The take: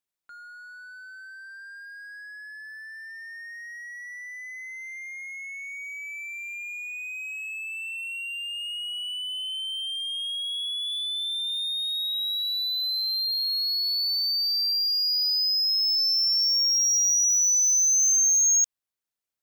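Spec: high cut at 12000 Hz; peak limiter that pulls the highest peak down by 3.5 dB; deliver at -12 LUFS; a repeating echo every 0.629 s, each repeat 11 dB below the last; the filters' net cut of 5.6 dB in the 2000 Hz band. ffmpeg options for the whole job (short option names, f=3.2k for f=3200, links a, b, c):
-af "lowpass=12k,equalizer=f=2k:t=o:g=-7.5,alimiter=limit=-21dB:level=0:latency=1,aecho=1:1:629|1258|1887:0.282|0.0789|0.0221,volume=12dB"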